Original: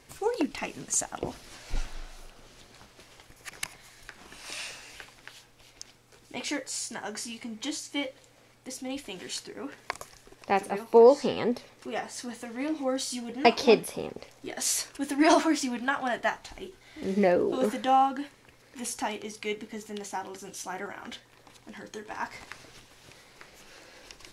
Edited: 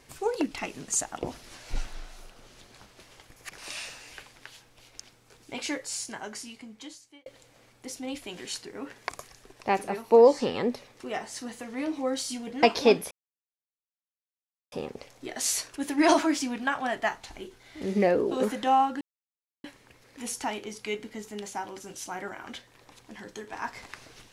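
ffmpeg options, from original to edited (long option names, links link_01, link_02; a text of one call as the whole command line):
ffmpeg -i in.wav -filter_complex "[0:a]asplit=5[link_01][link_02][link_03][link_04][link_05];[link_01]atrim=end=3.582[link_06];[link_02]atrim=start=4.398:end=8.08,asetpts=PTS-STARTPTS,afade=type=out:start_time=2.422:duration=1.26[link_07];[link_03]atrim=start=8.08:end=13.93,asetpts=PTS-STARTPTS,afade=type=in:duration=0.004:curve=hsin,afade=type=out:start_time=5.846:duration=0.004:curve=hsin,apad=pad_dur=1.61[link_08];[link_04]atrim=start=13.93:end=18.22,asetpts=PTS-STARTPTS,afade=type=in:duration=0.004:curve=hsin,afade=type=out:start_time=4.286:duration=0.004:curve=hsin,apad=pad_dur=0.63[link_09];[link_05]atrim=start=18.22,asetpts=PTS-STARTPTS,afade=type=in:duration=0.004:curve=hsin[link_10];[link_07][link_08][link_09][link_10]concat=n=4:v=0:a=1[link_11];[link_06][link_11]acrossfade=duration=0.004:curve1=hsin:curve2=hsin" out.wav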